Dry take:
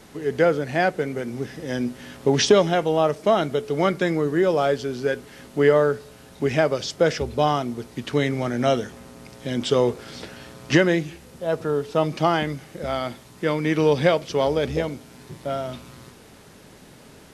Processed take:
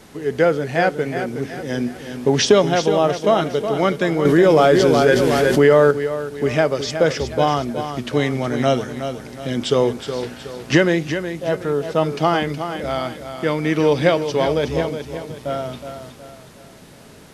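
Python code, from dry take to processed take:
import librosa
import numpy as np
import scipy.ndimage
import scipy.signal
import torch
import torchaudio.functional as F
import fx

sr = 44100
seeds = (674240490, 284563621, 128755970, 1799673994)

y = fx.echo_feedback(x, sr, ms=368, feedback_pct=41, wet_db=-9.0)
y = fx.env_flatten(y, sr, amount_pct=70, at=(4.25, 5.91))
y = y * librosa.db_to_amplitude(2.5)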